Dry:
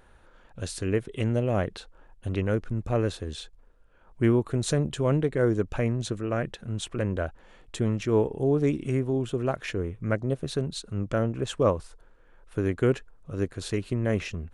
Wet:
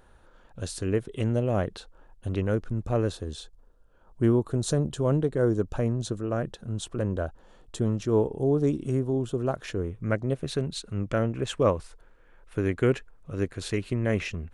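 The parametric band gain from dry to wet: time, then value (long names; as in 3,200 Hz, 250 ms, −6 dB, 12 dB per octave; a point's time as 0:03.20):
parametric band 2,200 Hz 0.79 octaves
0:02.97 −5 dB
0:03.38 −11.5 dB
0:09.35 −11.5 dB
0:09.98 −3.5 dB
0:10.25 +3.5 dB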